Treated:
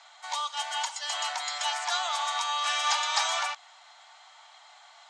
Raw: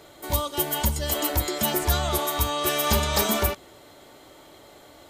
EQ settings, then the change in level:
Butterworth high-pass 710 Hz 72 dB per octave
Butterworth low-pass 7,300 Hz 36 dB per octave
0.0 dB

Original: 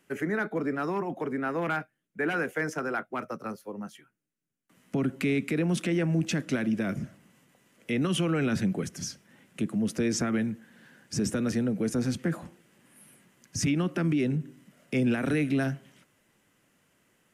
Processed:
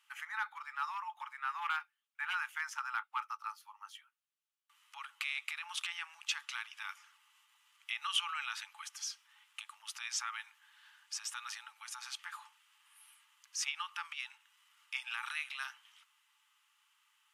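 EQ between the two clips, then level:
Chebyshev high-pass with heavy ripple 840 Hz, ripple 9 dB
+2.5 dB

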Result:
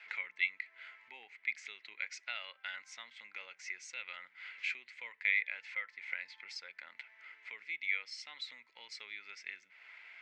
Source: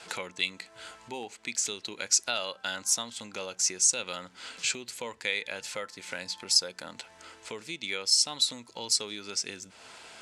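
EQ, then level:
resonant band-pass 2,100 Hz, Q 8.7
high-frequency loss of the air 120 metres
+8.0 dB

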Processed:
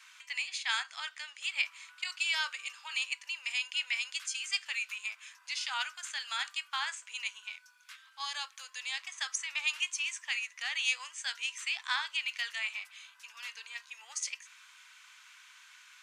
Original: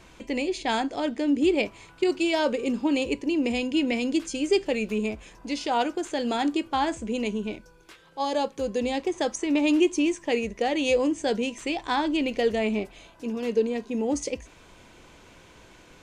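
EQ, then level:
Butterworth high-pass 1,200 Hz 36 dB per octave
0.0 dB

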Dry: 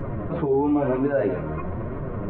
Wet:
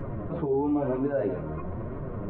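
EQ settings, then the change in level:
dynamic equaliser 2,200 Hz, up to −6 dB, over −45 dBFS, Q 0.87
−4.5 dB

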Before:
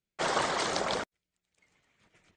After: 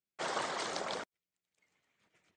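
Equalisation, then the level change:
high-pass filter 180 Hz 6 dB per octave
−7.0 dB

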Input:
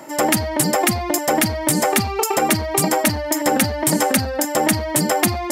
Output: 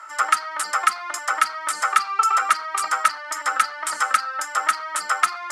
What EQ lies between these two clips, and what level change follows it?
high-pass with resonance 1,300 Hz, resonance Q 16
low-pass filter 9,900 Hz 24 dB per octave
−7.0 dB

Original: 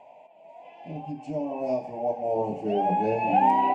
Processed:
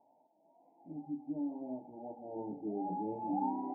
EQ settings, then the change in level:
formant resonators in series u
−2.5 dB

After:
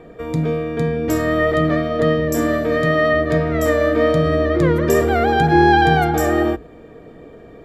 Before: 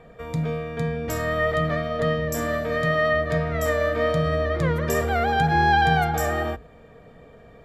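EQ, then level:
parametric band 330 Hz +15 dB 0.61 octaves
+3.5 dB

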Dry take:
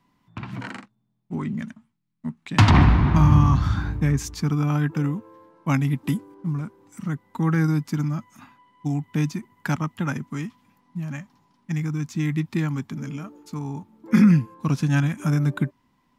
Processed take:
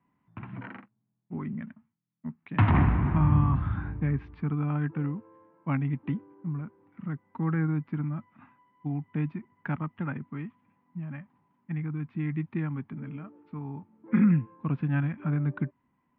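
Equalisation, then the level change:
high-pass filter 58 Hz
transistor ladder low-pass 3,300 Hz, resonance 25%
high-frequency loss of the air 460 metres
0.0 dB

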